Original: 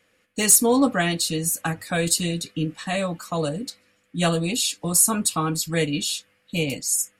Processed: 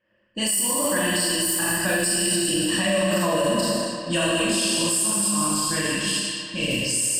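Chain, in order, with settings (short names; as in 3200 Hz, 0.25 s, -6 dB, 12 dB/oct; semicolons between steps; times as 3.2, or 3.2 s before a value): Doppler pass-by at 3.11, 13 m/s, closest 11 m; recorder AGC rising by 5.8 dB/s; ripple EQ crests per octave 1.3, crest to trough 15 dB; Schroeder reverb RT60 1.7 s, combs from 26 ms, DRR -7.5 dB; harmonic-percussive split percussive +4 dB; high shelf 10000 Hz +3.5 dB; limiter -13.5 dBFS, peak gain reduction 14 dB; thinning echo 0.238 s, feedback 65%, high-pass 190 Hz, level -11.5 dB; low-pass opened by the level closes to 2000 Hz, open at -19 dBFS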